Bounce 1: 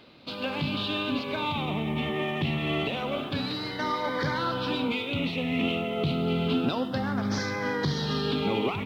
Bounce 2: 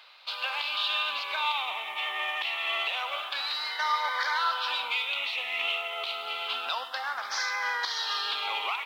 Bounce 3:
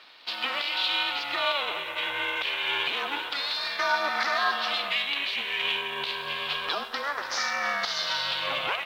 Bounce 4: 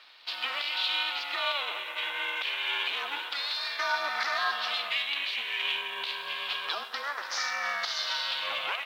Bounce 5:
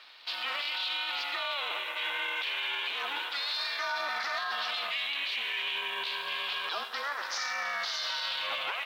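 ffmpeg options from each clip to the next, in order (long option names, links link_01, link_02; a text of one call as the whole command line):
ffmpeg -i in.wav -af "highpass=frequency=870:width=0.5412,highpass=frequency=870:width=1.3066,volume=4dB" out.wav
ffmpeg -i in.wav -af "aeval=exprs='val(0)*sin(2*PI*280*n/s)':channel_layout=same,volume=5dB" out.wav
ffmpeg -i in.wav -af "highpass=frequency=820:poles=1,volume=-2dB" out.wav
ffmpeg -i in.wav -af "alimiter=level_in=1dB:limit=-24dB:level=0:latency=1:release=13,volume=-1dB,volume=1.5dB" out.wav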